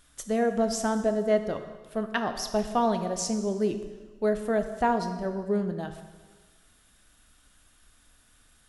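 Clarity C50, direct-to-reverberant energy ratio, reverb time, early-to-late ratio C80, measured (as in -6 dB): 9.5 dB, 7.0 dB, 1.4 s, 10.5 dB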